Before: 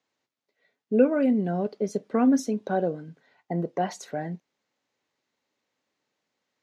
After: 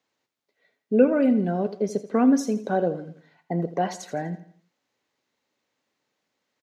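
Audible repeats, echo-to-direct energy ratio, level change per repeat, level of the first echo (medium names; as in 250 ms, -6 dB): 3, -13.0 dB, -8.0 dB, -14.0 dB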